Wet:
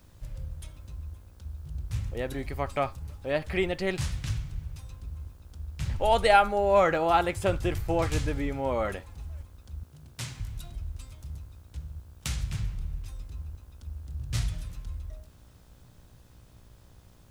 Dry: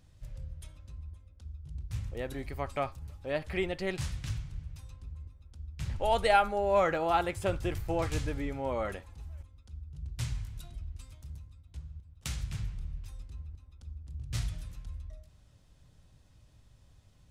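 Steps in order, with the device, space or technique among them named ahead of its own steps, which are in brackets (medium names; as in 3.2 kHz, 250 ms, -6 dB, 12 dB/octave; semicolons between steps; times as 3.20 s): video cassette with head-switching buzz (mains buzz 60 Hz, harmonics 28, -65 dBFS -5 dB/octave; white noise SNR 39 dB); 9.83–10.40 s: high-pass 180 Hz 12 dB/octave; trim +4.5 dB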